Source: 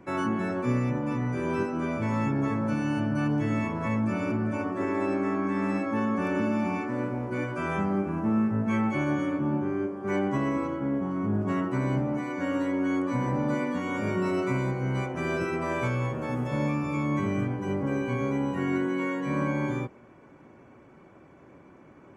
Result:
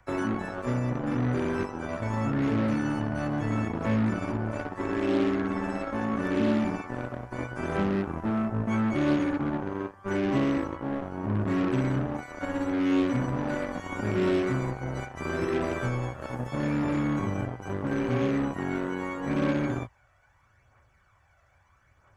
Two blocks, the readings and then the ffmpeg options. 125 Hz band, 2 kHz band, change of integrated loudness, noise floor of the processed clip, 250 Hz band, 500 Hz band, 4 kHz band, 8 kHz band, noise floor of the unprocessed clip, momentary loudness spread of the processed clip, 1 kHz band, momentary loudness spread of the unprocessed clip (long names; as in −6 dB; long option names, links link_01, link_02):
−0.5 dB, −1.0 dB, −0.5 dB, −64 dBFS, −0.5 dB, 0.0 dB, +3.0 dB, can't be measured, −53 dBFS, 8 LU, −1.5 dB, 3 LU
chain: -filter_complex "[0:a]equalizer=frequency=160:width_type=o:width=0.67:gain=-7,equalizer=frequency=1000:width_type=o:width=0.67:gain=-7,equalizer=frequency=2500:width_type=o:width=0.67:gain=-7,aphaser=in_gain=1:out_gain=1:delay=1.6:decay=0.44:speed=0.77:type=triangular,acrossover=split=110|810|3000[link_01][link_02][link_03][link_04];[link_02]acrusher=bits=4:mix=0:aa=0.5[link_05];[link_01][link_05][link_03][link_04]amix=inputs=4:normalize=0,acrossover=split=4000[link_06][link_07];[link_07]acompressor=threshold=-48dB:ratio=4:attack=1:release=60[link_08];[link_06][link_08]amix=inputs=2:normalize=0"